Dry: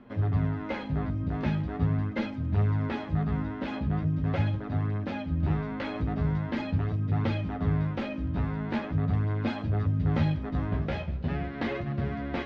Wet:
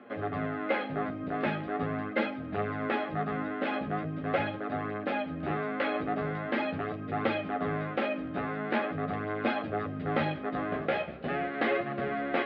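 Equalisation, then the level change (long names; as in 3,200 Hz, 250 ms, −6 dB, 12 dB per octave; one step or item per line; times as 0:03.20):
band-pass filter 420–3,900 Hz
Butterworth band-reject 950 Hz, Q 5.6
high-frequency loss of the air 190 metres
+8.0 dB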